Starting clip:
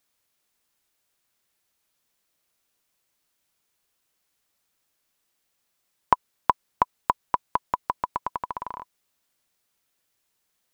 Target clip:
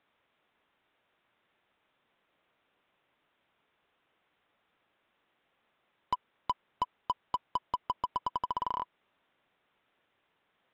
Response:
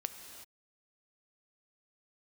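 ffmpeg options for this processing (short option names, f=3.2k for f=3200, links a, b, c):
-filter_complex "[0:a]lowshelf=f=310:g=8.5,aresample=8000,asoftclip=type=tanh:threshold=-16dB,aresample=44100,asplit=2[a][b];[b]highpass=f=720:p=1,volume=22dB,asoftclip=type=tanh:threshold=-14dB[c];[a][c]amix=inputs=2:normalize=0,lowpass=f=1.4k:p=1,volume=-6dB,volume=-5.5dB"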